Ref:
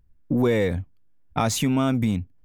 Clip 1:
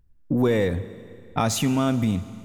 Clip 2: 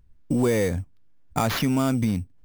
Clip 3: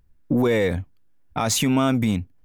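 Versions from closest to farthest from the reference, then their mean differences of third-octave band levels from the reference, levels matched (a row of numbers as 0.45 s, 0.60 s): 3, 1, 2; 2.0 dB, 3.5 dB, 4.5 dB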